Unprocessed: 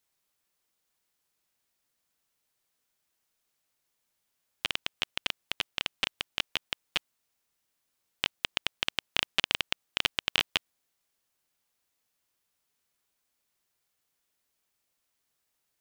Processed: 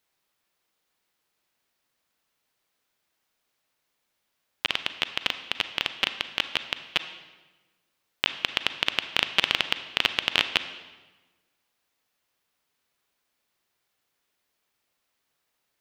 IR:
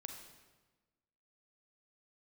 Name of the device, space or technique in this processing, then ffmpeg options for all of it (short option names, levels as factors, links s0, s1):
filtered reverb send: -filter_complex "[0:a]asplit=2[s0][s1];[s1]highpass=f=200:p=1,lowpass=5200[s2];[1:a]atrim=start_sample=2205[s3];[s2][s3]afir=irnorm=-1:irlink=0,volume=1.68[s4];[s0][s4]amix=inputs=2:normalize=0"